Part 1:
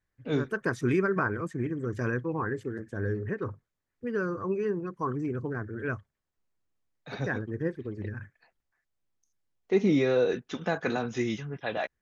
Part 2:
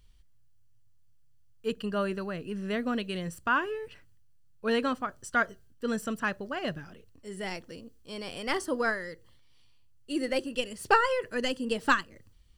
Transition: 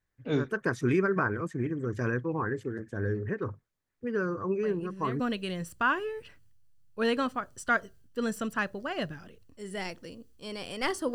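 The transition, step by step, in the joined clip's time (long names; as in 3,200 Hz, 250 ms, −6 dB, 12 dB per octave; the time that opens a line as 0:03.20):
part 1
0:04.63: mix in part 2 from 0:02.29 0.57 s −8.5 dB
0:05.20: continue with part 2 from 0:02.86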